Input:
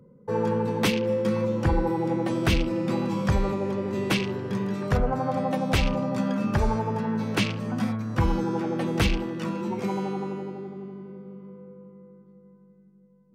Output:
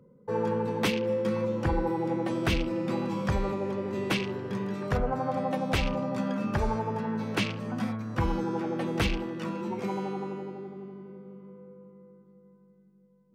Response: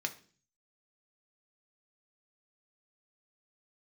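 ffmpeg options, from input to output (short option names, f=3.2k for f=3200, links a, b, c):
-af "bass=f=250:g=-3,treble=f=4k:g=-3,volume=-2.5dB"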